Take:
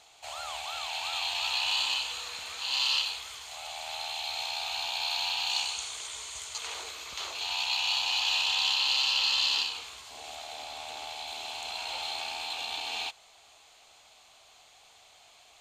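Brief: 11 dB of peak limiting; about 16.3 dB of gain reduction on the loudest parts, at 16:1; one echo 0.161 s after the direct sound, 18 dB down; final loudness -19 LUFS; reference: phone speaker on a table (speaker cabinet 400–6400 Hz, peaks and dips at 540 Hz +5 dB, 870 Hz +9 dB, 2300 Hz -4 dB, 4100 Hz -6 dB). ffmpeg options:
-af "acompressor=threshold=-40dB:ratio=16,alimiter=level_in=12dB:limit=-24dB:level=0:latency=1,volume=-12dB,highpass=f=400:w=0.5412,highpass=f=400:w=1.3066,equalizer=f=540:t=q:w=4:g=5,equalizer=f=870:t=q:w=4:g=9,equalizer=f=2.3k:t=q:w=4:g=-4,equalizer=f=4.1k:t=q:w=4:g=-6,lowpass=f=6.4k:w=0.5412,lowpass=f=6.4k:w=1.3066,aecho=1:1:161:0.126,volume=25.5dB"

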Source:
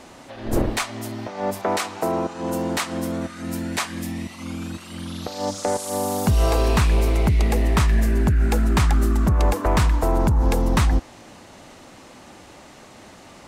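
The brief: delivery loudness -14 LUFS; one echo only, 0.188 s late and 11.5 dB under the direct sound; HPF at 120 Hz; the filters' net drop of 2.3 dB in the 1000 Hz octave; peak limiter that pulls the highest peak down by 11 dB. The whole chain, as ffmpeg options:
-af "highpass=120,equalizer=f=1k:t=o:g=-3,alimiter=limit=-18.5dB:level=0:latency=1,aecho=1:1:188:0.266,volume=14.5dB"

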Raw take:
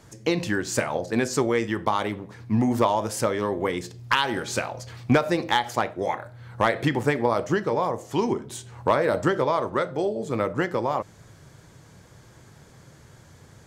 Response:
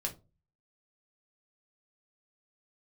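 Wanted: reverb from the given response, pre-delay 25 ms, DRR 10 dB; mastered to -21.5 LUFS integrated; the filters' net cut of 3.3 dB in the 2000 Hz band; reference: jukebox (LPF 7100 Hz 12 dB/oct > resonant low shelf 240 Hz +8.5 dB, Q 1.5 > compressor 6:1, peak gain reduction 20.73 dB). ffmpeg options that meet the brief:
-filter_complex "[0:a]equalizer=f=2k:t=o:g=-4,asplit=2[a][b];[1:a]atrim=start_sample=2205,adelay=25[c];[b][c]afir=irnorm=-1:irlink=0,volume=-12dB[d];[a][d]amix=inputs=2:normalize=0,lowpass=7.1k,lowshelf=f=240:t=q:w=1.5:g=8.5,acompressor=threshold=-31dB:ratio=6,volume=14dB"

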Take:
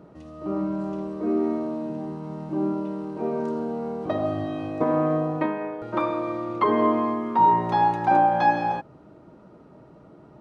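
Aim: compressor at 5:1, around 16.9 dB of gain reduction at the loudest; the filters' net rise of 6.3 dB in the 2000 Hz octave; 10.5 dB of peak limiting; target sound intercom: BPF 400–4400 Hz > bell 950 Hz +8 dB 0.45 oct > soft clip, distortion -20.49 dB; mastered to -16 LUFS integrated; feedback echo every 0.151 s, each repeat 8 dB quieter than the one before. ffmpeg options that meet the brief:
-af "equalizer=f=2k:t=o:g=7.5,acompressor=threshold=-33dB:ratio=5,alimiter=level_in=6.5dB:limit=-24dB:level=0:latency=1,volume=-6.5dB,highpass=400,lowpass=4.4k,equalizer=f=950:t=o:w=0.45:g=8,aecho=1:1:151|302|453|604|755:0.398|0.159|0.0637|0.0255|0.0102,asoftclip=threshold=-25dB,volume=21dB"

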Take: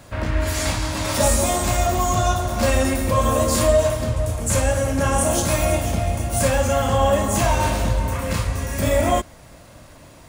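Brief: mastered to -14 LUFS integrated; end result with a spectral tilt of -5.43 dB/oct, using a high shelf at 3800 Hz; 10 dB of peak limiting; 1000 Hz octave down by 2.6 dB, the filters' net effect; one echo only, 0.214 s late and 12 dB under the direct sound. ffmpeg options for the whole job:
-af "equalizer=f=1k:t=o:g=-3,highshelf=f=3.8k:g=-7.5,alimiter=limit=-17dB:level=0:latency=1,aecho=1:1:214:0.251,volume=12dB"

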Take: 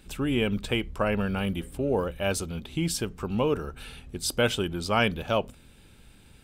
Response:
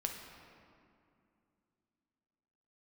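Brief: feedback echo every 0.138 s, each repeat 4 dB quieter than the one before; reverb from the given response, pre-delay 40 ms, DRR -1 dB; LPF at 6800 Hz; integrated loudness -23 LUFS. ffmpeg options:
-filter_complex "[0:a]lowpass=6.8k,aecho=1:1:138|276|414|552|690|828|966|1104|1242:0.631|0.398|0.25|0.158|0.0994|0.0626|0.0394|0.0249|0.0157,asplit=2[a][b];[1:a]atrim=start_sample=2205,adelay=40[c];[b][c]afir=irnorm=-1:irlink=0,volume=0dB[d];[a][d]amix=inputs=2:normalize=0,volume=-0.5dB"

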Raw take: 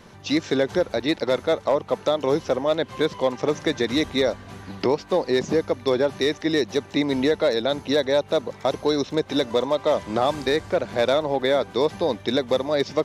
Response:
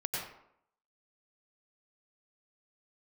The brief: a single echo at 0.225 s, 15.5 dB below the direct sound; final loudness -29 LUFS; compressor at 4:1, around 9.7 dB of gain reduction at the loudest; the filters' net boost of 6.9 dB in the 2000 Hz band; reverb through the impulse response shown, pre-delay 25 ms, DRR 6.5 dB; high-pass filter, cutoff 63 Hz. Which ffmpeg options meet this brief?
-filter_complex "[0:a]highpass=63,equalizer=f=2k:t=o:g=8,acompressor=threshold=-27dB:ratio=4,aecho=1:1:225:0.168,asplit=2[a][b];[1:a]atrim=start_sample=2205,adelay=25[c];[b][c]afir=irnorm=-1:irlink=0,volume=-10.5dB[d];[a][d]amix=inputs=2:normalize=0,volume=0.5dB"

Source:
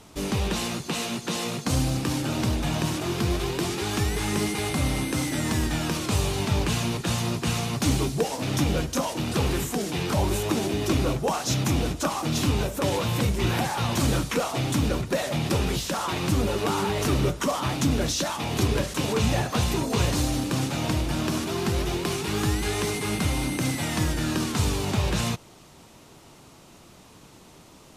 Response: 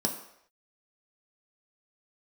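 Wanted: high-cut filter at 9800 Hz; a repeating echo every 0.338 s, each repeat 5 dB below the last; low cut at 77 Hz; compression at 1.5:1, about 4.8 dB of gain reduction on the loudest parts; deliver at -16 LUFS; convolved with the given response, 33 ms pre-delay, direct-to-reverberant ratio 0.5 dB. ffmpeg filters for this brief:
-filter_complex "[0:a]highpass=77,lowpass=9.8k,acompressor=threshold=-33dB:ratio=1.5,aecho=1:1:338|676|1014|1352|1690|2028|2366:0.562|0.315|0.176|0.0988|0.0553|0.031|0.0173,asplit=2[a][b];[1:a]atrim=start_sample=2205,adelay=33[c];[b][c]afir=irnorm=-1:irlink=0,volume=-7dB[d];[a][d]amix=inputs=2:normalize=0,volume=7dB"

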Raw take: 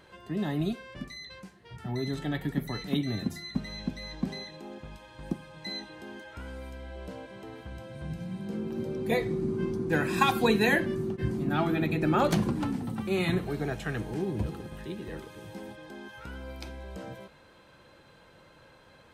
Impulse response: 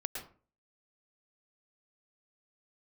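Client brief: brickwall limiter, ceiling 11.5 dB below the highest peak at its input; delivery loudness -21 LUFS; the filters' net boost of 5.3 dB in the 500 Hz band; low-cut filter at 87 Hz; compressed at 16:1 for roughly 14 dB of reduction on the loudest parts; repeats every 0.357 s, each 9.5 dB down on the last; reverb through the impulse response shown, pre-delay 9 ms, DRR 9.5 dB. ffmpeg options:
-filter_complex "[0:a]highpass=87,equalizer=f=500:t=o:g=7,acompressor=threshold=-29dB:ratio=16,alimiter=level_in=6dB:limit=-24dB:level=0:latency=1,volume=-6dB,aecho=1:1:357|714|1071|1428:0.335|0.111|0.0365|0.012,asplit=2[a][b];[1:a]atrim=start_sample=2205,adelay=9[c];[b][c]afir=irnorm=-1:irlink=0,volume=-10.5dB[d];[a][d]amix=inputs=2:normalize=0,volume=18dB"

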